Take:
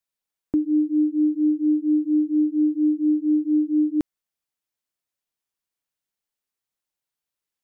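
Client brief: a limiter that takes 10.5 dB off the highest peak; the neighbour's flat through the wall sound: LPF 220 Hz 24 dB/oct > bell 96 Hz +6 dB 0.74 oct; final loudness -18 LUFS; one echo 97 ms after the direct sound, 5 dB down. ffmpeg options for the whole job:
-af "alimiter=level_in=1dB:limit=-24dB:level=0:latency=1,volume=-1dB,lowpass=f=220:w=0.5412,lowpass=f=220:w=1.3066,equalizer=f=96:t=o:w=0.74:g=6,aecho=1:1:97:0.562,volume=22.5dB"

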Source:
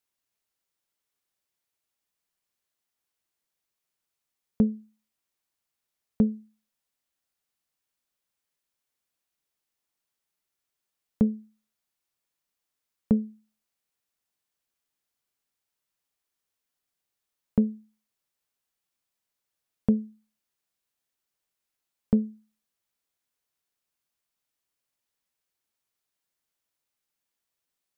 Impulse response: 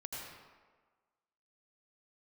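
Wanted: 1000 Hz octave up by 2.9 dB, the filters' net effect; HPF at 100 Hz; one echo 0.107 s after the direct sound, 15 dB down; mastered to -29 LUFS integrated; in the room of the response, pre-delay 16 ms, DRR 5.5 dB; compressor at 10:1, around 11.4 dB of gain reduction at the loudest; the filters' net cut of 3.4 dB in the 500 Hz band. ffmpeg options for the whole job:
-filter_complex "[0:a]highpass=100,equalizer=f=500:t=o:g=-5,equalizer=f=1k:t=o:g=6,acompressor=threshold=-29dB:ratio=10,aecho=1:1:107:0.178,asplit=2[a][b];[1:a]atrim=start_sample=2205,adelay=16[c];[b][c]afir=irnorm=-1:irlink=0,volume=-5dB[d];[a][d]amix=inputs=2:normalize=0,volume=12dB"

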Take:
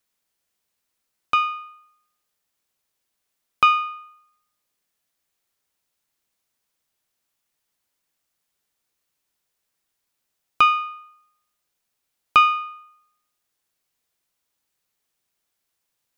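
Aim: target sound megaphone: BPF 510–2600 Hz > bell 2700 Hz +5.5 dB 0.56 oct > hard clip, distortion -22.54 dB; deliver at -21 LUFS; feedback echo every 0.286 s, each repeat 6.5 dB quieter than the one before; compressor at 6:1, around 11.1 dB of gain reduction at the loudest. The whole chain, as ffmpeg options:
-af "acompressor=threshold=-23dB:ratio=6,highpass=510,lowpass=2.6k,equalizer=f=2.7k:t=o:w=0.56:g=5.5,aecho=1:1:286|572|858|1144|1430|1716:0.473|0.222|0.105|0.0491|0.0231|0.0109,asoftclip=type=hard:threshold=-13.5dB,volume=9.5dB"

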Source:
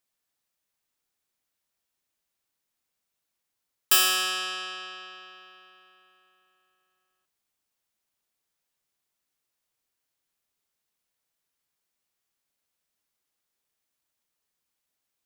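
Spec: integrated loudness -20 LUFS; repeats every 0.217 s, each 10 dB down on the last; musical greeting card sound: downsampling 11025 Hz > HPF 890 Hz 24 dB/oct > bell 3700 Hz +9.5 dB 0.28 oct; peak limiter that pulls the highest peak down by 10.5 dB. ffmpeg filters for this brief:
-af "alimiter=limit=-19.5dB:level=0:latency=1,aecho=1:1:217|434|651|868:0.316|0.101|0.0324|0.0104,aresample=11025,aresample=44100,highpass=f=890:w=0.5412,highpass=f=890:w=1.3066,equalizer=f=3.7k:t=o:w=0.28:g=9.5,volume=9dB"

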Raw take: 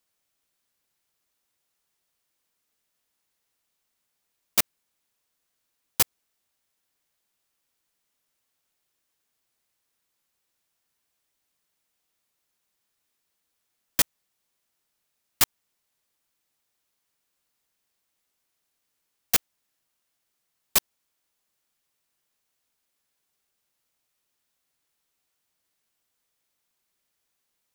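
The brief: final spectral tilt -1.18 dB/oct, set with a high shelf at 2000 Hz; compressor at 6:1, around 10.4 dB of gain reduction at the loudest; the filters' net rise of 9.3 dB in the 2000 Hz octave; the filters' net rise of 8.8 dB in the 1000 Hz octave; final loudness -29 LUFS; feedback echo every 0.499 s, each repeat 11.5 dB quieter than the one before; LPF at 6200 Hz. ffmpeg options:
-af "lowpass=6.2k,equalizer=f=1k:t=o:g=7.5,highshelf=f=2k:g=8,equalizer=f=2k:t=o:g=4.5,acompressor=threshold=-25dB:ratio=6,aecho=1:1:499|998|1497:0.266|0.0718|0.0194,volume=6dB"

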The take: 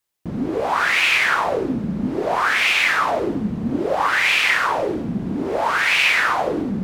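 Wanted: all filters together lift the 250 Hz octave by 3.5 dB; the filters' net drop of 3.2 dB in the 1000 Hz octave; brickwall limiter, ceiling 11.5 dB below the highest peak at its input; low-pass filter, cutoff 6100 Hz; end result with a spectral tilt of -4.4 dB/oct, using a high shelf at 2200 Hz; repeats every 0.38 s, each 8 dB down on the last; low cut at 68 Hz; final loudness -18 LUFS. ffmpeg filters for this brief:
-af "highpass=68,lowpass=6.1k,equalizer=f=250:t=o:g=4.5,equalizer=f=1k:t=o:g=-6.5,highshelf=f=2.2k:g=8.5,alimiter=limit=-13dB:level=0:latency=1,aecho=1:1:380|760|1140|1520|1900:0.398|0.159|0.0637|0.0255|0.0102,volume=2.5dB"

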